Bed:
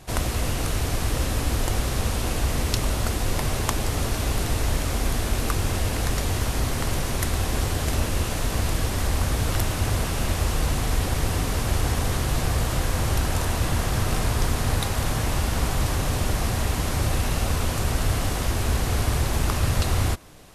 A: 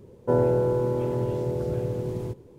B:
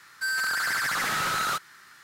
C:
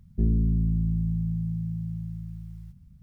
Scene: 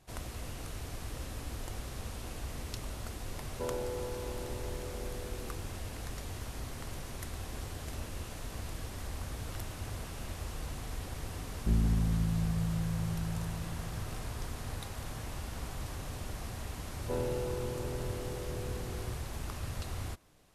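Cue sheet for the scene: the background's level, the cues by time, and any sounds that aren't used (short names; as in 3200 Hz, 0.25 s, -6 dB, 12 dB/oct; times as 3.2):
bed -16.5 dB
3.32 add A -12 dB + HPF 490 Hz 6 dB/oct
11.48 add C -5.5 dB
16.81 add A -13.5 dB
not used: B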